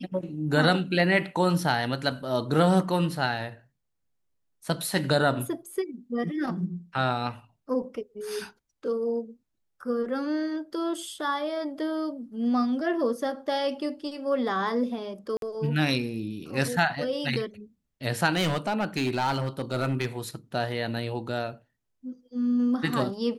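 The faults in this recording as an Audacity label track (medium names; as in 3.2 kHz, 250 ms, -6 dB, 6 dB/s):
15.370000	15.420000	dropout 52 ms
18.320000	20.060000	clipped -21 dBFS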